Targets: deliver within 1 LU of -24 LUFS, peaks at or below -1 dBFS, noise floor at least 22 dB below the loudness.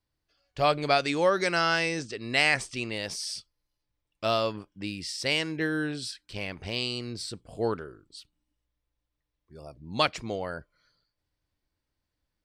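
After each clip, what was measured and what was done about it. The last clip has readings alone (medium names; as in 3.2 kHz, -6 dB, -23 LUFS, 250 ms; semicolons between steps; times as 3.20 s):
loudness -28.5 LUFS; peak level -7.5 dBFS; loudness target -24.0 LUFS
-> trim +4.5 dB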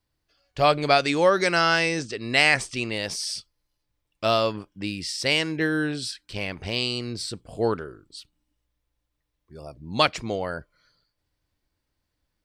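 loudness -24.0 LUFS; peak level -3.0 dBFS; noise floor -79 dBFS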